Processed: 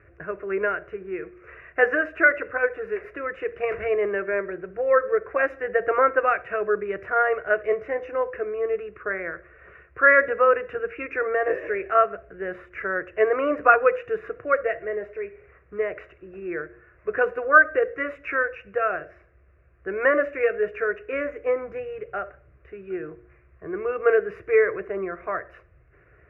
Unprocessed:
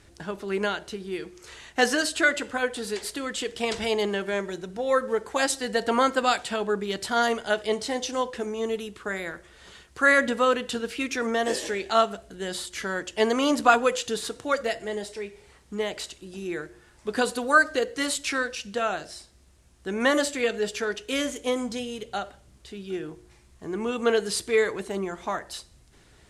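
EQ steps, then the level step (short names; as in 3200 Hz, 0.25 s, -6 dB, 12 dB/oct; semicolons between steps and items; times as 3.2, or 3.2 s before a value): HPF 56 Hz; elliptic low-pass 2700 Hz, stop band 40 dB; fixed phaser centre 870 Hz, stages 6; +5.0 dB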